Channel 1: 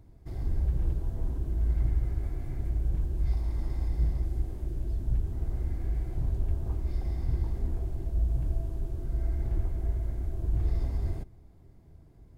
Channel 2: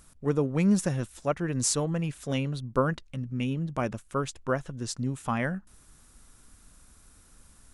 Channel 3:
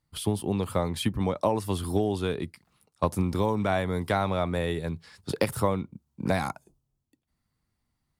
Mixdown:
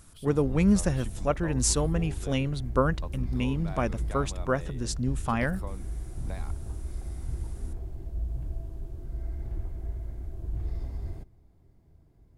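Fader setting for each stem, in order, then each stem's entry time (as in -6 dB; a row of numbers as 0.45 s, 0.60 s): -5.0 dB, +1.0 dB, -17.0 dB; 0.00 s, 0.00 s, 0.00 s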